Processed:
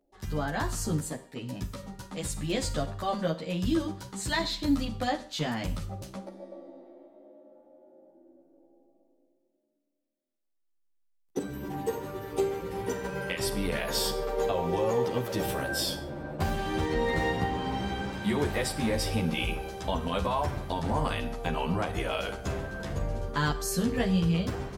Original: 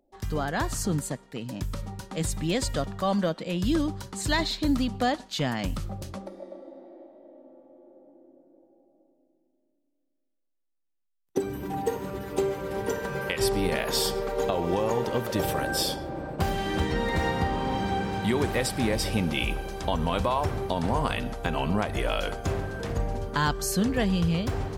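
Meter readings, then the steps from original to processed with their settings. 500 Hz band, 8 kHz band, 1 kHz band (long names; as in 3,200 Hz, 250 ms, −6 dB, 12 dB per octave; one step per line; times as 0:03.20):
−2.5 dB, −3.0 dB, −3.0 dB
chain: four-comb reverb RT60 0.44 s, combs from 32 ms, DRR 12 dB
barber-pole flanger 11.7 ms +0.44 Hz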